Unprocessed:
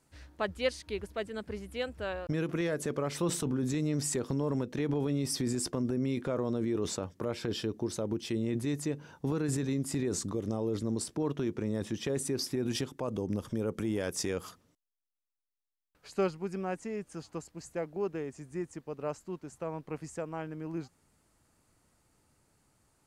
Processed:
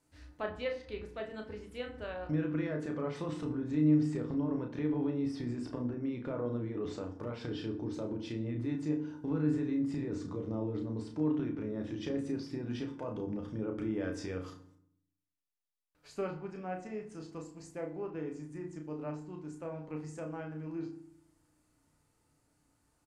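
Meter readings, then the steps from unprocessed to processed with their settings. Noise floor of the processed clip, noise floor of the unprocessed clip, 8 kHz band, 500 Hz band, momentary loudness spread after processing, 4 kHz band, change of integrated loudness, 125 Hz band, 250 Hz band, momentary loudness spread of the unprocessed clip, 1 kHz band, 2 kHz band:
−76 dBFS, below −85 dBFS, below −15 dB, −4.5 dB, 11 LU, −10.5 dB, −2.5 dB, −2.5 dB, −0.5 dB, 8 LU, −4.5 dB, −5.0 dB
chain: treble cut that deepens with the level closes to 2,500 Hz, closed at −29 dBFS
double-tracking delay 33 ms −6 dB
feedback delay network reverb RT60 0.65 s, low-frequency decay 1.45×, high-frequency decay 0.6×, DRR 5 dB
level −6.5 dB

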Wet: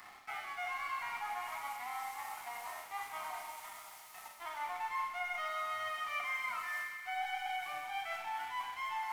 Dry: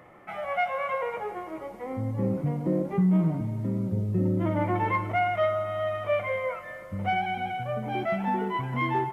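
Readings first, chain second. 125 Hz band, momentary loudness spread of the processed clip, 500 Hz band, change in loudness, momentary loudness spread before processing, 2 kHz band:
below −40 dB, 8 LU, −22.5 dB, −11.5 dB, 10 LU, −5.0 dB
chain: Butterworth high-pass 710 Hz 96 dB per octave
high-shelf EQ 3,600 Hz +10.5 dB
reversed playback
downward compressor 6 to 1, threshold −43 dBFS, peak gain reduction 20 dB
reversed playback
dead-zone distortion −59 dBFS
on a send: delay with a high-pass on its return 127 ms, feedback 82%, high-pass 1,500 Hz, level −11 dB
on the sum: four-comb reverb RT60 0.77 s, combs from 29 ms, DRR 4 dB
level +5 dB

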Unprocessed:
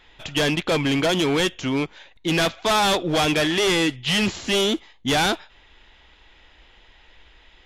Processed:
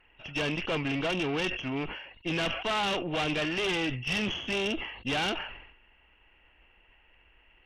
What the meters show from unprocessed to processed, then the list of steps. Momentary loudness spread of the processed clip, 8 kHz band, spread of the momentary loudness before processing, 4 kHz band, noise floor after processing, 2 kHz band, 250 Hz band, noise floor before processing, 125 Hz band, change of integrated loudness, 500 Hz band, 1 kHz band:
7 LU, −15.5 dB, 7 LU, −9.5 dB, −63 dBFS, −6.5 dB, −9.5 dB, −54 dBFS, −8.5 dB, −9.0 dB, −10.0 dB, −9.5 dB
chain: hearing-aid frequency compression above 2,600 Hz 4 to 1
tube saturation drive 17 dB, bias 0.75
level that may fall only so fast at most 65 dB per second
level −5.5 dB

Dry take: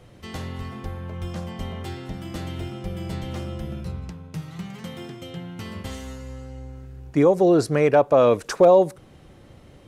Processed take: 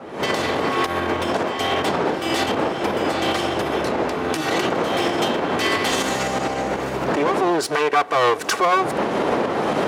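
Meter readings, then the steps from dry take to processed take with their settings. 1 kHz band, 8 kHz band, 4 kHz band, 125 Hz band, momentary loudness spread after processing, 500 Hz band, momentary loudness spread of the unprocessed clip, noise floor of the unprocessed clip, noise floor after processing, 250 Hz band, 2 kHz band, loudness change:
+9.5 dB, +11.5 dB, +15.5 dB, −3.0 dB, 4 LU, 0.0 dB, 20 LU, −49 dBFS, −28 dBFS, +3.0 dB, +14.0 dB, +1.0 dB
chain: lower of the sound and its delayed copy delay 2.6 ms
wind on the microphone 440 Hz −29 dBFS
camcorder AGC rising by 63 dB per second
brickwall limiter −13 dBFS, peak gain reduction 8 dB
meter weighting curve A
one half of a high-frequency compander decoder only
level +6.5 dB

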